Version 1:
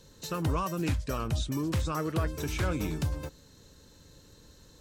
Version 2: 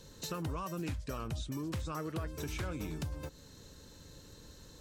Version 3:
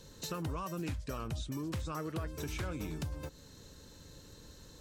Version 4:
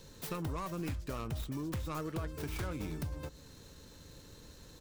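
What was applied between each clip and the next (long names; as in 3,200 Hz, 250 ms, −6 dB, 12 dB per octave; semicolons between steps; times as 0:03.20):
downward compressor 3 to 1, threshold −40 dBFS, peak gain reduction 11.5 dB; level +1.5 dB
no processing that can be heard
stylus tracing distortion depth 0.46 ms; single-tap delay 230 ms −22.5 dB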